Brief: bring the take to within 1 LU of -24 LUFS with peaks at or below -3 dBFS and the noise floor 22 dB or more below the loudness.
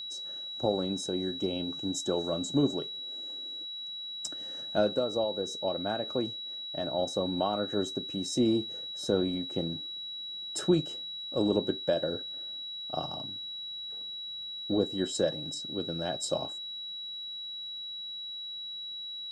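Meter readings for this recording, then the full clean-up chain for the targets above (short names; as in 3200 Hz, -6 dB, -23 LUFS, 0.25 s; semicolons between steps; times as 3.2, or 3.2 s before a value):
ticks 34/s; steady tone 3900 Hz; tone level -37 dBFS; loudness -32.5 LUFS; peak -13.5 dBFS; loudness target -24.0 LUFS
-> de-click; notch 3900 Hz, Q 30; gain +8.5 dB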